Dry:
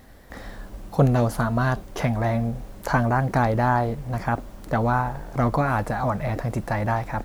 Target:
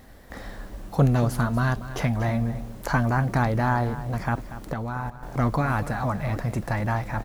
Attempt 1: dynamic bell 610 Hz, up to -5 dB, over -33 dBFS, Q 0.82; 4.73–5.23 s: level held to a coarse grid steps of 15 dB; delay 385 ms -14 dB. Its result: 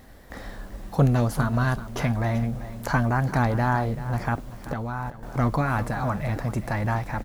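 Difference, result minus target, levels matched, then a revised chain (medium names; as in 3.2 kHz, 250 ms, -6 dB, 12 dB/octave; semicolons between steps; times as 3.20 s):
echo 148 ms late
dynamic bell 610 Hz, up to -5 dB, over -33 dBFS, Q 0.82; 4.73–5.23 s: level held to a coarse grid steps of 15 dB; delay 237 ms -14 dB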